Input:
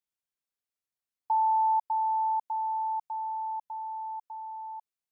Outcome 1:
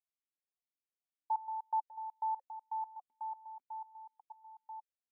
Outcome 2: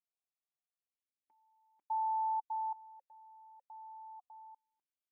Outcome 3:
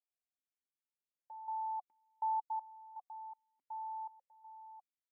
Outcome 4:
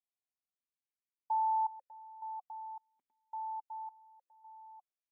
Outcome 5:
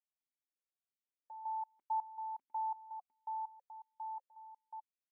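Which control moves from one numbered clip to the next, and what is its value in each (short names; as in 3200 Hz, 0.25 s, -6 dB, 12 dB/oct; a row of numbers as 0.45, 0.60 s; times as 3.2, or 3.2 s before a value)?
vowel sequencer, rate: 8.1, 1.1, 2.7, 1.8, 5.5 Hz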